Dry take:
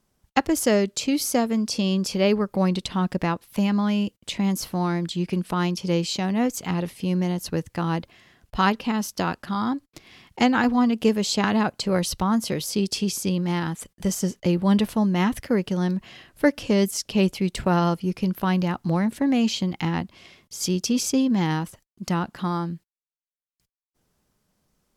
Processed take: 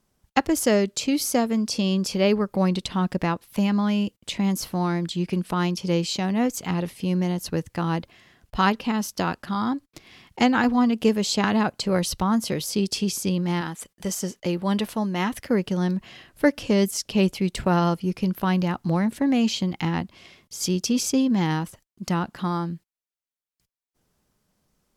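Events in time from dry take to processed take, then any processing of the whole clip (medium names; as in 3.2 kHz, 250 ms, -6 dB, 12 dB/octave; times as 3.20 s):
13.61–15.45 s: bass shelf 220 Hz -9.5 dB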